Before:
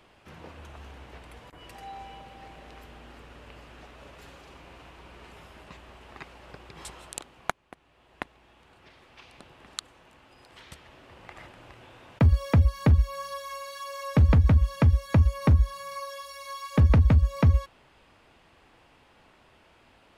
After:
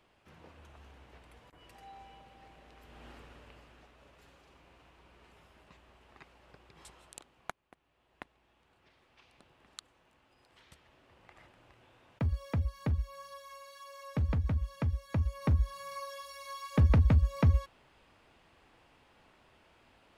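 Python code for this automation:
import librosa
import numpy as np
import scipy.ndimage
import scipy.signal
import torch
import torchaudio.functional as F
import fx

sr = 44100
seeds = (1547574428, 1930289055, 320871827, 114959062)

y = fx.gain(x, sr, db=fx.line((2.79, -10.0), (3.07, -3.0), (3.93, -12.0), (15.07, -12.0), (15.86, -5.0)))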